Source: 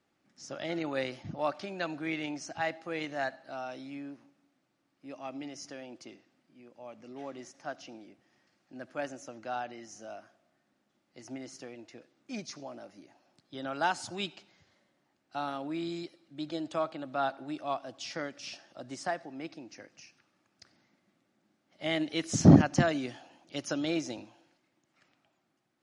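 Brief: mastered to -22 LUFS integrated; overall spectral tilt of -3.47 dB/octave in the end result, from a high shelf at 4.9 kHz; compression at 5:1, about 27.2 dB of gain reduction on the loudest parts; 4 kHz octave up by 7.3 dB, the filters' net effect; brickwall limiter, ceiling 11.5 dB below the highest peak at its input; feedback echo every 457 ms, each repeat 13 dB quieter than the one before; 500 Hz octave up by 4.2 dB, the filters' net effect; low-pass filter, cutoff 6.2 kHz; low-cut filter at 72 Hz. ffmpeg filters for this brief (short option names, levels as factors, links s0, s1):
-af "highpass=72,lowpass=6200,equalizer=f=500:t=o:g=5.5,equalizer=f=4000:t=o:g=8.5,highshelf=f=4900:g=3.5,acompressor=threshold=0.00708:ratio=5,alimiter=level_in=5.62:limit=0.0631:level=0:latency=1,volume=0.178,aecho=1:1:457|914|1371:0.224|0.0493|0.0108,volume=23.7"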